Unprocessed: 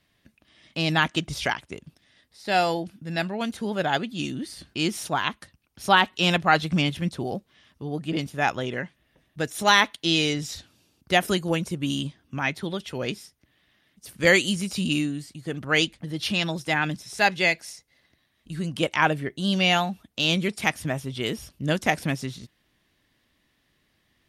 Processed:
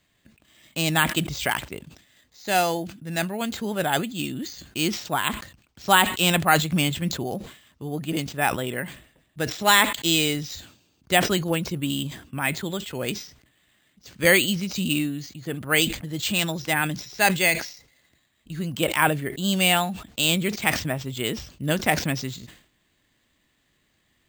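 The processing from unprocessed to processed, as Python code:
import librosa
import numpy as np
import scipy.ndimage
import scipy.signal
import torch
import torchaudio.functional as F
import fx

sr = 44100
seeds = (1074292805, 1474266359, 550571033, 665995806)

y = fx.high_shelf(x, sr, hz=3700.0, db=4.5)
y = np.repeat(scipy.signal.resample_poly(y, 1, 4), 4)[:len(y)]
y = fx.sustainer(y, sr, db_per_s=110.0)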